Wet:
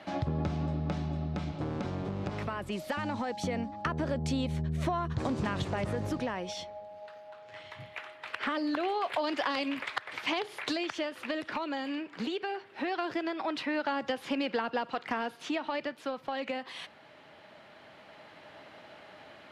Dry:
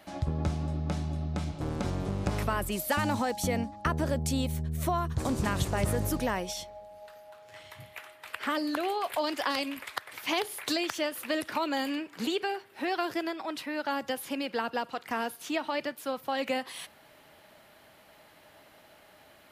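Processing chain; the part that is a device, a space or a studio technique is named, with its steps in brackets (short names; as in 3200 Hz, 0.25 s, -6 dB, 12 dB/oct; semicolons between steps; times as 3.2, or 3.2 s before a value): AM radio (BPF 100–4000 Hz; compressor 5:1, threshold -33 dBFS, peak gain reduction 9 dB; soft clip -23.5 dBFS, distortion -26 dB; tremolo 0.21 Hz, depth 38%); gain +6 dB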